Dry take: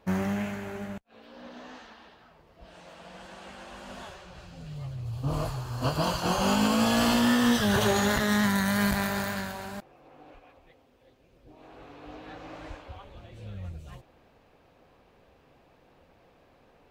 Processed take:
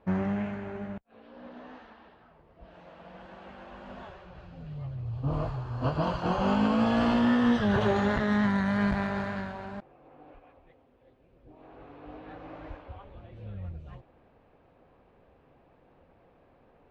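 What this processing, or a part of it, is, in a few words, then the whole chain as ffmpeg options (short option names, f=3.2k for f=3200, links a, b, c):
phone in a pocket: -af "lowpass=3.4k,highshelf=f=2.1k:g=-9"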